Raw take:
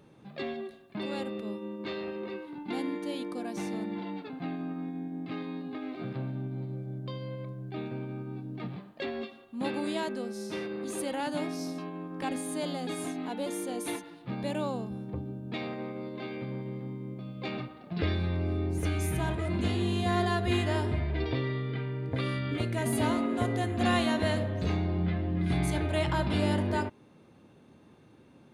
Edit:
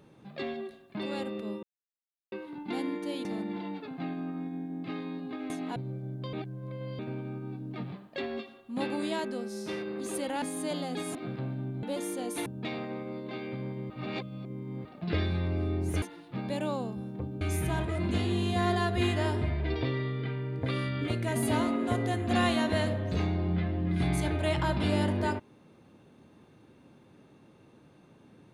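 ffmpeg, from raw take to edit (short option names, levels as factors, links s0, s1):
-filter_complex "[0:a]asplit=16[s0][s1][s2][s3][s4][s5][s6][s7][s8][s9][s10][s11][s12][s13][s14][s15];[s0]atrim=end=1.63,asetpts=PTS-STARTPTS,afade=t=out:st=1.626:d=0.004:c=hsin[s16];[s1]atrim=start=1.63:end=2.32,asetpts=PTS-STARTPTS,volume=0[s17];[s2]atrim=start=2.32:end=3.252,asetpts=PTS-STARTPTS,afade=t=in:d=0.004:c=hsin[s18];[s3]atrim=start=3.668:end=5.922[s19];[s4]atrim=start=13.068:end=13.332[s20];[s5]atrim=start=6.598:end=7.172[s21];[s6]atrim=start=7.168:end=7.832,asetpts=PTS-STARTPTS,areverse[s22];[s7]atrim=start=7.828:end=11.262[s23];[s8]atrim=start=12.338:end=13.072[s24];[s9]atrim=start=5.918:end=6.602[s25];[s10]atrim=start=13.328:end=13.962[s26];[s11]atrim=start=15.348:end=16.792[s27];[s12]atrim=start=16.788:end=17.742,asetpts=PTS-STARTPTS,areverse[s28];[s13]atrim=start=17.738:end=18.912[s29];[s14]atrim=start=13.958:end=15.352[s30];[s15]atrim=start=18.908[s31];[s16][s17][s18]concat=n=3:v=0:a=1[s32];[s32][s19]acrossfade=d=0.004:c1=hsin:c2=hsin[s33];[s33][s20]acrossfade=d=0.004:c1=hsin:c2=hsin[s34];[s34][s21]acrossfade=d=0.004:c1=hsin:c2=hsin[s35];[s35][s22]acrossfade=d=0.004:c1=hsin:c2=hsin[s36];[s36][s23]acrossfade=d=0.004:c1=hsin:c2=hsin[s37];[s37][s24]acrossfade=d=0.004:c1=hsin:c2=hsin[s38];[s38][s25]acrossfade=d=0.004:c1=hsin:c2=hsin[s39];[s39][s26]acrossfade=d=0.004:c1=hsin:c2=hsin[s40];[s40][s27]acrossfade=d=0.004:c1=hsin:c2=hsin[s41];[s41][s28]acrossfade=d=0.004:c1=hsin:c2=hsin[s42];[s42][s29]acrossfade=d=0.004:c1=hsin:c2=hsin[s43];[s43][s30]acrossfade=d=0.004:c1=hsin:c2=hsin[s44];[s44][s31]acrossfade=d=0.004:c1=hsin:c2=hsin"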